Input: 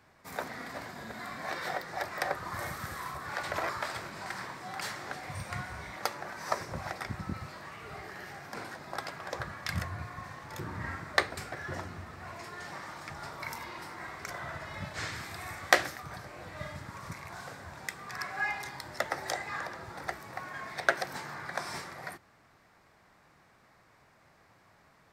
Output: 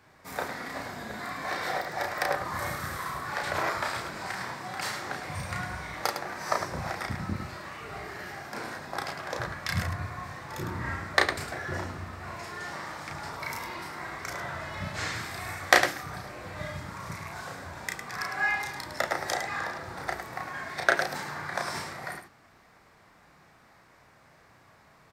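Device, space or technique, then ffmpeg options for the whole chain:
slapback doubling: -filter_complex "[0:a]asplit=3[a][b][c];[b]adelay=33,volume=-3.5dB[d];[c]adelay=106,volume=-7.5dB[e];[a][d][e]amix=inputs=3:normalize=0,volume=2.5dB"

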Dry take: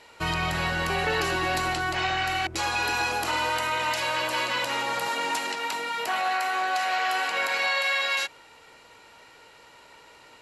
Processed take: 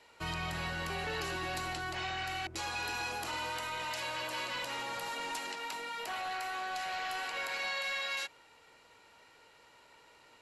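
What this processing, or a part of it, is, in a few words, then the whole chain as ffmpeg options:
one-band saturation: -filter_complex "[0:a]acrossover=split=210|2700[a][b][c];[b]asoftclip=type=tanh:threshold=-25dB[d];[a][d][c]amix=inputs=3:normalize=0,volume=-9dB"

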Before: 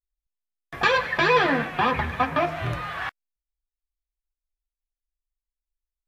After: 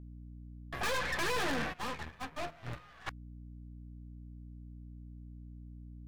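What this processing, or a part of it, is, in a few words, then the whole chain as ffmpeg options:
valve amplifier with mains hum: -filter_complex "[0:a]aeval=exprs='(tanh(39.8*val(0)+0.75)-tanh(0.75))/39.8':c=same,aeval=exprs='val(0)+0.00447*(sin(2*PI*60*n/s)+sin(2*PI*2*60*n/s)/2+sin(2*PI*3*60*n/s)/3+sin(2*PI*4*60*n/s)/4+sin(2*PI*5*60*n/s)/5)':c=same,asplit=3[a][b][c];[a]afade=t=out:st=1.72:d=0.02[d];[b]agate=range=-20dB:threshold=-31dB:ratio=16:detection=peak,afade=t=in:st=1.72:d=0.02,afade=t=out:st=3.06:d=0.02[e];[c]afade=t=in:st=3.06:d=0.02[f];[d][e][f]amix=inputs=3:normalize=0"

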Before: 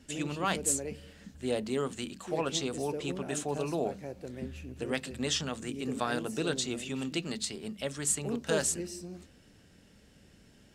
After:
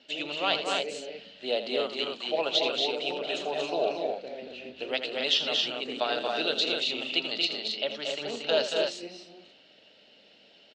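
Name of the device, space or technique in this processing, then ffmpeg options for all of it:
phone earpiece: -filter_complex "[0:a]highshelf=f=10k:g=8.5,asettb=1/sr,asplit=3[a][b][c];[a]atrim=end=7.454[d];[b]atrim=start=7.45:end=8.68,asetpts=PTS-STARTPTS,afade=t=in:d=0.004:c=qsin,afade=t=out:st=1.226:d=0.004:c=qsin,lowpass=f=6.8k:w=0.5412,lowpass=f=6.8k:w=1.3066[e];[c]atrim=start=8.676[f];[d][e]acrossfade=d=0.004:c1=hsin:c2=qsin[g];[g][f]acrossfade=d=0.004:c1=qsin:c2=hsin,highpass=460,equalizer=f=630:t=q:w=4:g=7,equalizer=f=1.1k:t=q:w=4:g=-6,equalizer=f=1.7k:t=q:w=4:g=-6,equalizer=f=2.9k:t=q:w=4:g=8,equalizer=f=4.1k:t=q:w=4:g=9,lowpass=f=4.3k:w=0.5412,lowpass=f=4.3k:w=1.3066,aecho=1:1:81.63|230.3|271.1:0.282|0.562|0.562,volume=2.5dB"

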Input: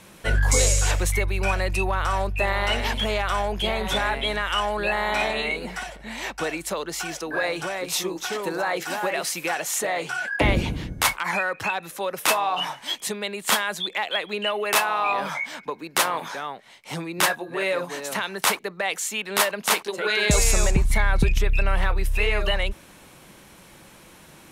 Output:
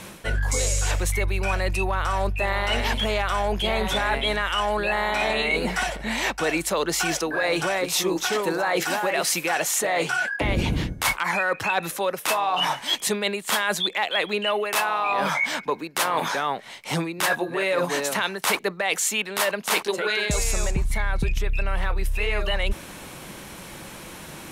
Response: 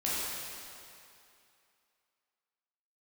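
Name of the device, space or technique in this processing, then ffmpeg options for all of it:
compression on the reversed sound: -af "areverse,acompressor=threshold=-29dB:ratio=10,areverse,volume=9dB"

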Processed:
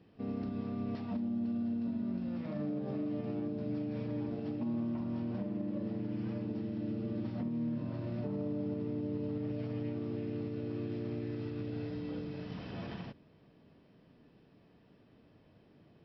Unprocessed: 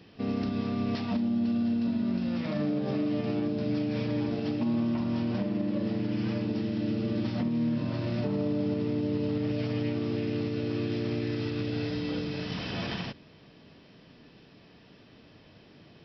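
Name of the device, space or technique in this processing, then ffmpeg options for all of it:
through cloth: -af "highshelf=f=2.1k:g=-13.5,volume=-7dB"

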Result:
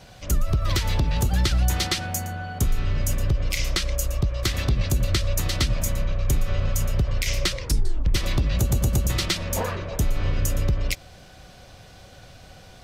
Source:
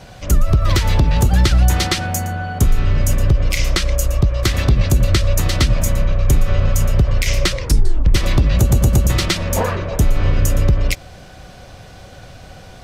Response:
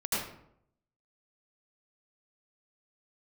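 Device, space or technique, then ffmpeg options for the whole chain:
presence and air boost: -af "equalizer=f=4k:t=o:w=1.7:g=3.5,highshelf=f=11k:g=6.5,volume=-8.5dB"

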